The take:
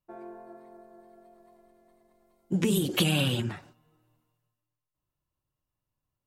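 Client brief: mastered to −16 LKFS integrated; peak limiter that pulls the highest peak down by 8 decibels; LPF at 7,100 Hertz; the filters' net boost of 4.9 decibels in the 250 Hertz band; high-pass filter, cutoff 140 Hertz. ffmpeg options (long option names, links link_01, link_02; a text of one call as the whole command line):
ffmpeg -i in.wav -af "highpass=140,lowpass=7100,equalizer=frequency=250:width_type=o:gain=8,volume=11.5dB,alimiter=limit=-6.5dB:level=0:latency=1" out.wav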